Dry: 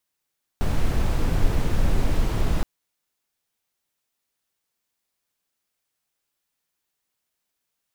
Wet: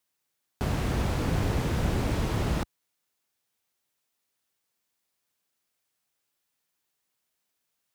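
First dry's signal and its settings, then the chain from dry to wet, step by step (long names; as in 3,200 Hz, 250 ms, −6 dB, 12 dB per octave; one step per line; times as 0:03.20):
noise brown, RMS −19 dBFS 2.02 s
high-pass filter 62 Hz
highs frequency-modulated by the lows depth 0.34 ms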